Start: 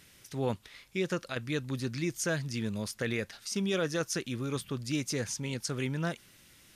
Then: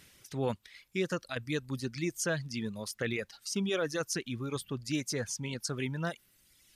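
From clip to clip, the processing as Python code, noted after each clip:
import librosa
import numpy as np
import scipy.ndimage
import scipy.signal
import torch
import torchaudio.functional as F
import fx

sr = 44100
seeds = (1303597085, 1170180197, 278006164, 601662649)

y = fx.dereverb_blind(x, sr, rt60_s=1.5)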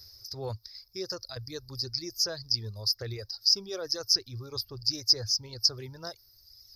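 y = fx.curve_eq(x, sr, hz=(110.0, 150.0, 250.0, 370.0, 860.0, 1200.0, 3100.0, 5000.0, 8100.0, 13000.0), db=(0, -22, -23, -12, -12, -14, -26, 14, -30, 0))
y = y * 10.0 ** (8.0 / 20.0)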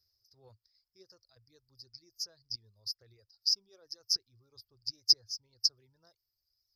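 y = fx.upward_expand(x, sr, threshold_db=-35.0, expansion=2.5)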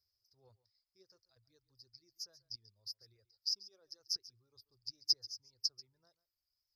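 y = x + 10.0 ** (-18.5 / 20.0) * np.pad(x, (int(139 * sr / 1000.0), 0))[:len(x)]
y = y * 10.0 ** (-7.5 / 20.0)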